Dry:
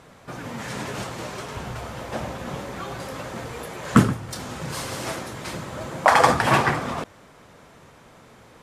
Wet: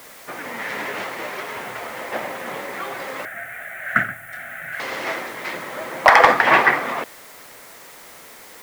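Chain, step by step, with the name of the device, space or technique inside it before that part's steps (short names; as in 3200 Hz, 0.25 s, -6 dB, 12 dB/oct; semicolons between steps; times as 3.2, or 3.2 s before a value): drive-through speaker (BPF 360–3500 Hz; bell 2000 Hz +9 dB 0.41 oct; hard clip -5.5 dBFS, distortion -17 dB; white noise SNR 22 dB); 3.25–4.8 EQ curve 110 Hz 0 dB, 470 Hz -24 dB, 690 Hz 0 dB, 1000 Hz -25 dB, 1500 Hz +6 dB, 4700 Hz -20 dB, 8800 Hz -4 dB, 13000 Hz -1 dB; gain +4 dB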